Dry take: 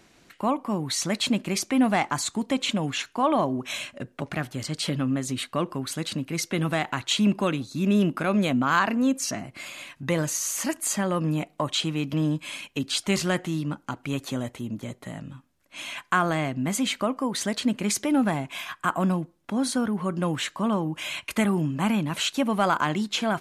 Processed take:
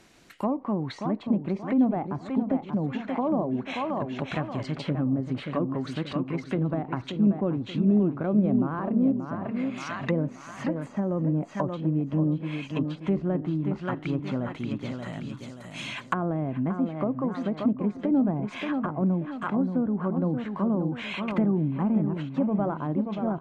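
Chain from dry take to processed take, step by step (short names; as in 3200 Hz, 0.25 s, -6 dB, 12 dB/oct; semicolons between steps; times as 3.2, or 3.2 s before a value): on a send: feedback echo 0.58 s, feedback 41%, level -7 dB; on the sum: treble ducked by the level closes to 540 Hz, closed at -21.5 dBFS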